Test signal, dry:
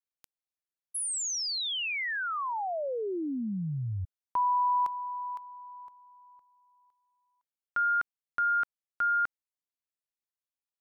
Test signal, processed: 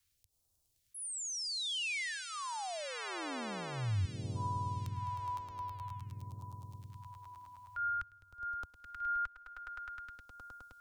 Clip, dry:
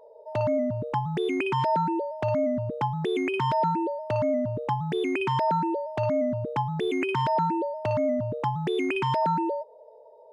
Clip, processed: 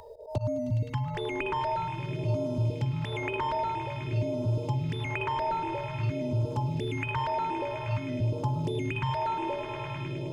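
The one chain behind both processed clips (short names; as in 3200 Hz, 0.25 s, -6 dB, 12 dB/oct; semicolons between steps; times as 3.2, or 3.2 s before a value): resonant low shelf 130 Hz +11 dB, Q 1.5; auto swell 0.11 s; swelling echo 0.104 s, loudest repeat 5, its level -15 dB; phaser stages 2, 0.5 Hz, lowest notch 120–2000 Hz; three-band squash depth 70%; gain -4 dB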